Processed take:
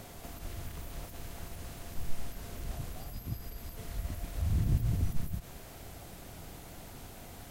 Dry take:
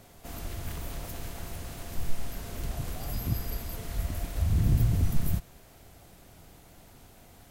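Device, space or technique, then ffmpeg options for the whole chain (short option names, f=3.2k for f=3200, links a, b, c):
de-esser from a sidechain: -filter_complex "[0:a]asplit=2[a][b];[b]highpass=4.8k,apad=whole_len=330778[c];[a][c]sidechaincompress=threshold=-59dB:ratio=8:attack=4.3:release=70,volume=7.5dB"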